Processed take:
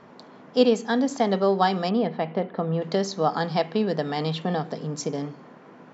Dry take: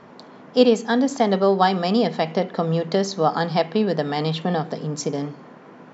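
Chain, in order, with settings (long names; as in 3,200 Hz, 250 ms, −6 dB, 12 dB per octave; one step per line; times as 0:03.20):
0:01.89–0:02.82: high-frequency loss of the air 350 metres
level −3.5 dB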